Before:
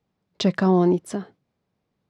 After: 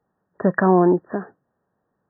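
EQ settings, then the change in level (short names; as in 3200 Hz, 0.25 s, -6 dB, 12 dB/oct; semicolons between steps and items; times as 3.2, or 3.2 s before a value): brick-wall FIR low-pass 1900 Hz; low shelf 280 Hz -11 dB; +7.5 dB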